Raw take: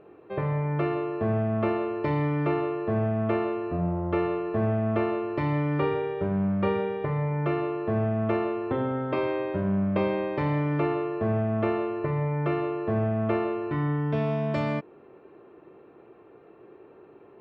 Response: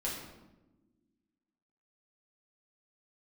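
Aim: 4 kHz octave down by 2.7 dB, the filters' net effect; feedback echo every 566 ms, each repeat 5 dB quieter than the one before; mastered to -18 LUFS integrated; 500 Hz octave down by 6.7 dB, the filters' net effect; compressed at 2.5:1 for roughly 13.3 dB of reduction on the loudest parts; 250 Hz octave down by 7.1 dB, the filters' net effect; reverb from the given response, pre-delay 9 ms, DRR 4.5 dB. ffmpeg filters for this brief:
-filter_complex "[0:a]equalizer=f=250:t=o:g=-9,equalizer=f=500:t=o:g=-6,equalizer=f=4000:t=o:g=-4,acompressor=threshold=0.00447:ratio=2.5,aecho=1:1:566|1132|1698|2264|2830|3396|3962:0.562|0.315|0.176|0.0988|0.0553|0.031|0.0173,asplit=2[s0][s1];[1:a]atrim=start_sample=2205,adelay=9[s2];[s1][s2]afir=irnorm=-1:irlink=0,volume=0.398[s3];[s0][s3]amix=inputs=2:normalize=0,volume=14.1"

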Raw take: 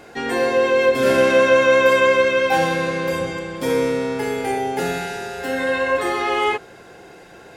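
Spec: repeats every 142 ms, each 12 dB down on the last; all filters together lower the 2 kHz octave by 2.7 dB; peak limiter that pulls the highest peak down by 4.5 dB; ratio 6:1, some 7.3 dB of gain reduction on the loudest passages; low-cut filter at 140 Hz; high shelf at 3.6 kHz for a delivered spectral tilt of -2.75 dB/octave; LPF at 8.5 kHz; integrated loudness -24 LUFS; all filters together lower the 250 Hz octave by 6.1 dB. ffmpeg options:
-af "highpass=140,lowpass=8500,equalizer=f=250:t=o:g=-7.5,equalizer=f=2000:t=o:g=-6,highshelf=f=3600:g=8.5,acompressor=threshold=0.1:ratio=6,alimiter=limit=0.141:level=0:latency=1,aecho=1:1:142|284|426:0.251|0.0628|0.0157,volume=1.12"

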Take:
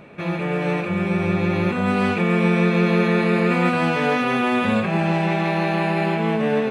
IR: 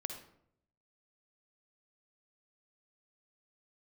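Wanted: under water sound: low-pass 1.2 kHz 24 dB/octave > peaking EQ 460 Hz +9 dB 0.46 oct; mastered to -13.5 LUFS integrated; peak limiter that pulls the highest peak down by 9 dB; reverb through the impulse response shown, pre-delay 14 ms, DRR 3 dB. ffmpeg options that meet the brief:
-filter_complex "[0:a]alimiter=limit=0.158:level=0:latency=1,asplit=2[s0][s1];[1:a]atrim=start_sample=2205,adelay=14[s2];[s1][s2]afir=irnorm=-1:irlink=0,volume=0.794[s3];[s0][s3]amix=inputs=2:normalize=0,lowpass=f=1200:w=0.5412,lowpass=f=1200:w=1.3066,equalizer=f=460:t=o:w=0.46:g=9,volume=2.11"

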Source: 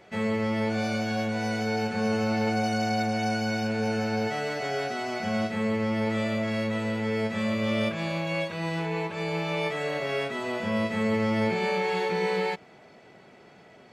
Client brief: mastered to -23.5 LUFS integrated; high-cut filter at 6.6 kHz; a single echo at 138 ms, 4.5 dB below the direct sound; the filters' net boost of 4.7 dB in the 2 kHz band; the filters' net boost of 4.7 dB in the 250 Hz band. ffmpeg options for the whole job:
-af "lowpass=6600,equalizer=f=250:t=o:g=5.5,equalizer=f=2000:t=o:g=5.5,aecho=1:1:138:0.596,volume=1.12"

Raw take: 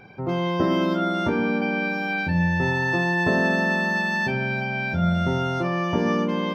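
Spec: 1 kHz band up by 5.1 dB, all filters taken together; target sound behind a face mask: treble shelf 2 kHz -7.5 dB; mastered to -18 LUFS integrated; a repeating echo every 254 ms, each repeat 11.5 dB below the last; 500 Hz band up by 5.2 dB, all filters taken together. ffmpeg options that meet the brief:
-af "equalizer=f=500:t=o:g=5.5,equalizer=f=1000:t=o:g=6.5,highshelf=f=2000:g=-7.5,aecho=1:1:254|508|762:0.266|0.0718|0.0194,volume=1.41"

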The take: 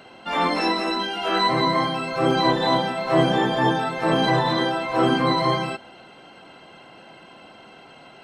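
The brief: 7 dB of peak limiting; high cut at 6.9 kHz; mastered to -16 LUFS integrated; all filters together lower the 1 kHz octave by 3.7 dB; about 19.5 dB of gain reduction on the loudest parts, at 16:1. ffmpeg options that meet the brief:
-af "lowpass=6900,equalizer=f=1000:t=o:g=-4.5,acompressor=threshold=0.0178:ratio=16,volume=21.1,alimiter=limit=0.473:level=0:latency=1"

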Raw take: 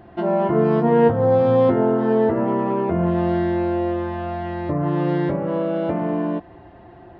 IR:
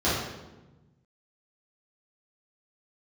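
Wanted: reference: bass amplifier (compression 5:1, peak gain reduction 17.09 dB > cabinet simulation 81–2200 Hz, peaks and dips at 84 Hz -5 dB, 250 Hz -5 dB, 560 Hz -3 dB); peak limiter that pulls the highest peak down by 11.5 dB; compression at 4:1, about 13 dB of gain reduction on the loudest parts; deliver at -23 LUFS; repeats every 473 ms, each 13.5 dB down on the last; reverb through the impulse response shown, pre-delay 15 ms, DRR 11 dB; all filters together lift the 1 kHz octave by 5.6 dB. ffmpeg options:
-filter_complex "[0:a]equalizer=f=1000:t=o:g=7.5,acompressor=threshold=0.0501:ratio=4,alimiter=level_in=1.5:limit=0.0631:level=0:latency=1,volume=0.668,aecho=1:1:473|946:0.211|0.0444,asplit=2[s0][s1];[1:a]atrim=start_sample=2205,adelay=15[s2];[s1][s2]afir=irnorm=-1:irlink=0,volume=0.0501[s3];[s0][s3]amix=inputs=2:normalize=0,acompressor=threshold=0.00355:ratio=5,highpass=f=81:w=0.5412,highpass=f=81:w=1.3066,equalizer=f=84:t=q:w=4:g=-5,equalizer=f=250:t=q:w=4:g=-5,equalizer=f=560:t=q:w=4:g=-3,lowpass=f=2200:w=0.5412,lowpass=f=2200:w=1.3066,volume=25.1"

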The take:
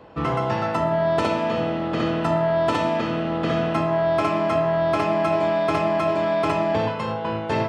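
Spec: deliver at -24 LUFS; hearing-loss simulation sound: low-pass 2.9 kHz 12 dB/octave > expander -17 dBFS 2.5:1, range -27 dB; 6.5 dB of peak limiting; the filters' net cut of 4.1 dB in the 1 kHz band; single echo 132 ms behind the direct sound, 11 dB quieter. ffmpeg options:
-af "equalizer=f=1000:t=o:g=-5.5,alimiter=limit=0.15:level=0:latency=1,lowpass=2900,aecho=1:1:132:0.282,agate=range=0.0447:threshold=0.141:ratio=2.5,volume=2.99"

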